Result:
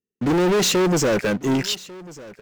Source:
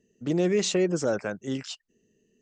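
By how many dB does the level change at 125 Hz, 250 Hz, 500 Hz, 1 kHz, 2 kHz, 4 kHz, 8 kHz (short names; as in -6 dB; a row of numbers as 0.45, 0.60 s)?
+7.5, +7.0, +6.0, +13.5, +9.5, +10.5, +9.0 dB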